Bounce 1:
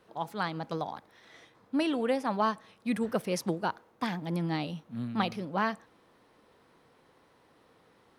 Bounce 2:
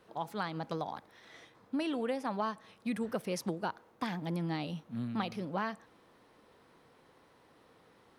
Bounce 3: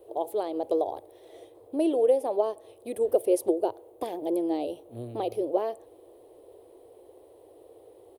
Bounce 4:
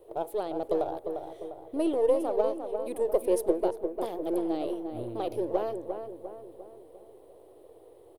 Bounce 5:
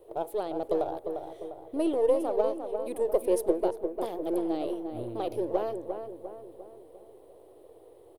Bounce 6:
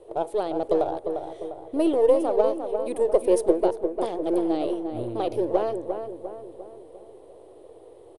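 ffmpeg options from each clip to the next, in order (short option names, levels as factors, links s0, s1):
-af "acompressor=threshold=0.0224:ratio=2.5"
-af "firequalizer=gain_entry='entry(110,0);entry(160,-29);entry(350,11);entry(640,8);entry(900,-5);entry(1400,-20);entry(3100,-7);entry(5500,-13);entry(9400,6)':delay=0.05:min_phase=1,volume=1.78"
-filter_complex "[0:a]aeval=exprs='if(lt(val(0),0),0.708*val(0),val(0))':c=same,asplit=2[s0][s1];[s1]adelay=350,lowpass=f=1700:p=1,volume=0.473,asplit=2[s2][s3];[s3]adelay=350,lowpass=f=1700:p=1,volume=0.52,asplit=2[s4][s5];[s5]adelay=350,lowpass=f=1700:p=1,volume=0.52,asplit=2[s6][s7];[s7]adelay=350,lowpass=f=1700:p=1,volume=0.52,asplit=2[s8][s9];[s9]adelay=350,lowpass=f=1700:p=1,volume=0.52,asplit=2[s10][s11];[s11]adelay=350,lowpass=f=1700:p=1,volume=0.52[s12];[s0][s2][s4][s6][s8][s10][s12]amix=inputs=7:normalize=0,volume=0.891"
-af anull
-af "aresample=22050,aresample=44100,volume=1.88"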